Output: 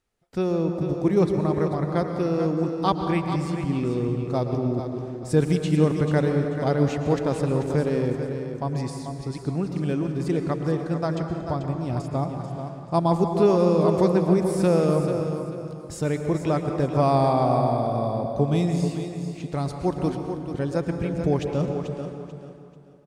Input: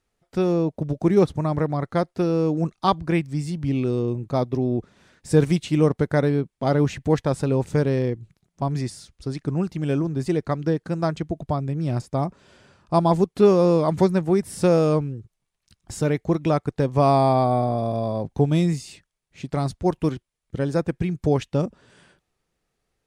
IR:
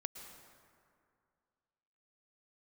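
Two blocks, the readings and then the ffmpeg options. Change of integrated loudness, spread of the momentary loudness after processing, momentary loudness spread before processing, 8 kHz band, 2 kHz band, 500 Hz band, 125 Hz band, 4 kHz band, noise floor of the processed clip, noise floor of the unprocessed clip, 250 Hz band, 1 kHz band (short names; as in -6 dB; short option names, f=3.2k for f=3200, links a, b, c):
-1.5 dB, 11 LU, 10 LU, -2.0 dB, -1.5 dB, -1.0 dB, -1.0 dB, -2.0 dB, -40 dBFS, -79 dBFS, -1.0 dB, -1.5 dB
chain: -filter_complex "[0:a]aecho=1:1:439|878|1317:0.355|0.103|0.0298[a];[1:a]atrim=start_sample=2205[b];[a][b]afir=irnorm=-1:irlink=0"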